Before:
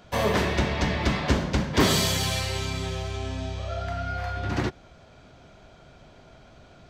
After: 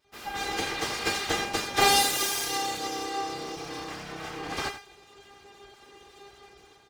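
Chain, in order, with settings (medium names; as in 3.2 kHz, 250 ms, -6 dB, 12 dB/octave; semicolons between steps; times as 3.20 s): feedback comb 400 Hz, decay 0.3 s, harmonics all, mix 100%; full-wave rectifier; high-pass 54 Hz; on a send: delay 86 ms -11.5 dB; on the sum: level rider gain up to 15 dB; trim +5 dB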